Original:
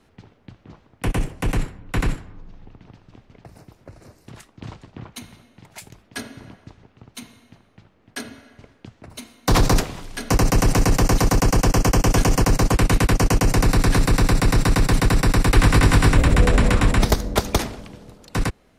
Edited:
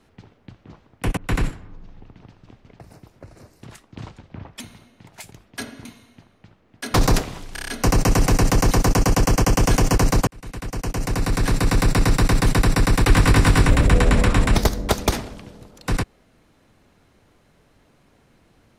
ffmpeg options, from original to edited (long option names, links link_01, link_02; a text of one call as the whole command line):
ffmpeg -i in.wav -filter_complex "[0:a]asplit=12[link_01][link_02][link_03][link_04][link_05][link_06][link_07][link_08][link_09][link_10][link_11][link_12];[link_01]atrim=end=1.172[link_13];[link_02]atrim=start=1.818:end=4.834[link_14];[link_03]atrim=start=4.83:end=5.18,asetpts=PTS-STARTPTS,asetrate=36603,aresample=44100,atrim=end_sample=18596,asetpts=PTS-STARTPTS[link_15];[link_04]atrim=start=5.176:end=6.432[link_16];[link_05]atrim=start=7.188:end=8.282[link_17];[link_06]atrim=start=9.558:end=10.182[link_18];[link_07]atrim=start=10.148:end=10.182[link_19];[link_08]atrim=start=10.148:end=10.182[link_20];[link_09]atrim=start=10.148:end=10.182[link_21];[link_10]atrim=start=10.148:end=10.182[link_22];[link_11]atrim=start=10.148:end=12.74,asetpts=PTS-STARTPTS,afade=type=out:start_time=2.588:duration=0.004:curve=hsin[link_23];[link_12]atrim=start=12.74,asetpts=PTS-STARTPTS,afade=type=in:duration=1.63[link_24];[link_13][link_14]acrossfade=duration=0.004:curve1=hsin:curve2=hsin[link_25];[link_25][link_15]acrossfade=duration=0.004:curve1=hsin:curve2=hsin[link_26];[link_26][link_16]acrossfade=duration=0.004:curve1=hsin:curve2=hsin[link_27];[link_27][link_17]acrossfade=duration=0.004:curve1=hsin:curve2=hsin[link_28];[link_28][link_18]acrossfade=duration=0.004:curve1=hsin:curve2=hsin[link_29];[link_29][link_19]acrossfade=duration=0.004:curve1=hsin:curve2=hsin[link_30];[link_30][link_20]acrossfade=duration=0.004:curve1=hsin:curve2=hsin[link_31];[link_31][link_21]acrossfade=duration=0.004:curve1=hsin:curve2=hsin[link_32];[link_32][link_22]acrossfade=duration=0.004:curve1=hsin:curve2=hsin[link_33];[link_23][link_24]concat=n=2:v=0:a=1[link_34];[link_33][link_34]acrossfade=duration=0.004:curve1=hsin:curve2=hsin" out.wav